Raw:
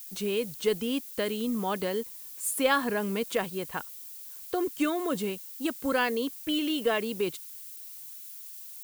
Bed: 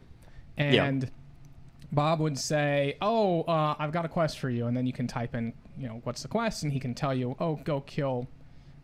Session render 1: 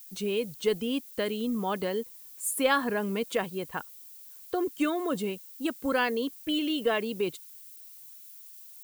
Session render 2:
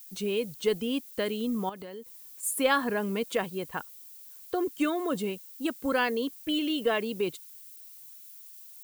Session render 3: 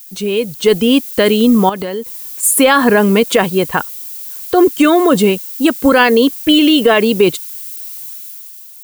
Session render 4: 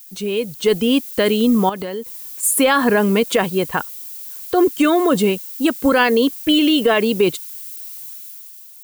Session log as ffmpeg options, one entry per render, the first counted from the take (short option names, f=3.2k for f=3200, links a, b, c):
-af "afftdn=nr=6:nf=-44"
-filter_complex "[0:a]asettb=1/sr,asplit=3[a][b][c];[a]atrim=end=1.694[d];[b]atrim=start=1.69:end=2.43,asetpts=PTS-STARTPTS,afade=t=in:d=0.004:c=qsin,afade=t=out:st=0.736:d=0.004:c=qsin,acompressor=threshold=-40dB:ratio=4:attack=3.2:release=140:knee=1:detection=peak[e];[c]atrim=start=2.426[f];[d][e]acrossfade=d=0.004:c1=hsin:c2=qsin[g];[g][f]acrossfade=d=0.004:c1=qsin:c2=hsin"
-af "dynaudnorm=f=150:g=9:m=8.5dB,alimiter=level_in=12dB:limit=-1dB:release=50:level=0:latency=1"
-af "volume=-5dB"